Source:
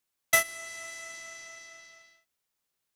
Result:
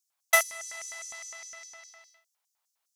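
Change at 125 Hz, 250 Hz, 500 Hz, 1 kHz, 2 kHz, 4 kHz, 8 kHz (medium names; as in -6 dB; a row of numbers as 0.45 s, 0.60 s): under -20 dB, under -10 dB, +2.5 dB, +3.5 dB, +1.0 dB, +0.5 dB, +1.0 dB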